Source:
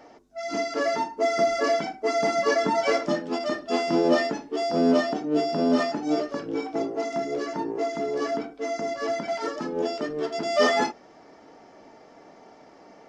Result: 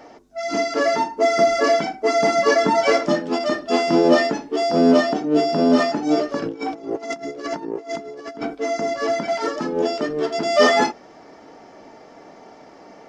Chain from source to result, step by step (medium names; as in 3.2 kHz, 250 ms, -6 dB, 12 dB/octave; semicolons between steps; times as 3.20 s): 6.42–8.55 s: compressor with a negative ratio -34 dBFS, ratio -0.5; trim +6 dB